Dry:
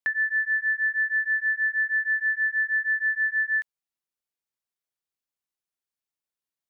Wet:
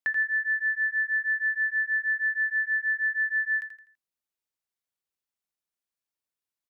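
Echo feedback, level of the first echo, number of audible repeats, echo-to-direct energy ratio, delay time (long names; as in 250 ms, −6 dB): 36%, −9.5 dB, 3, −9.0 dB, 83 ms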